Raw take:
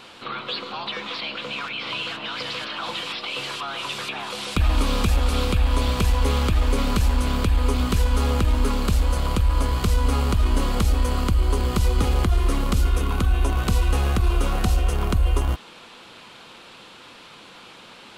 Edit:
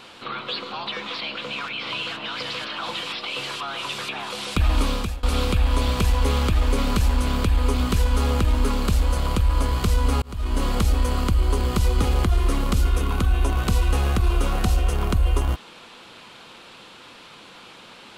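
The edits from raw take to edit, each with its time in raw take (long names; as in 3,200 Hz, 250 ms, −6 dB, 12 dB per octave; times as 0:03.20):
0:04.85–0:05.23: fade out, to −23.5 dB
0:10.22–0:10.66: fade in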